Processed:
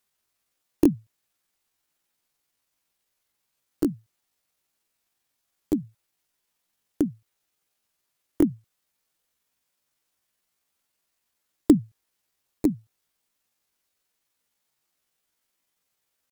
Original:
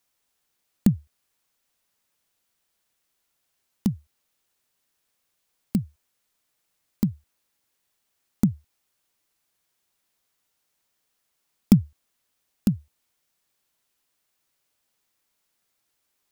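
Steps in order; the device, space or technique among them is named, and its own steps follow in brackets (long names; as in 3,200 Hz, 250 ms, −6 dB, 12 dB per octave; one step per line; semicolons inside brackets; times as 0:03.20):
chipmunk voice (pitch shifter +7 semitones)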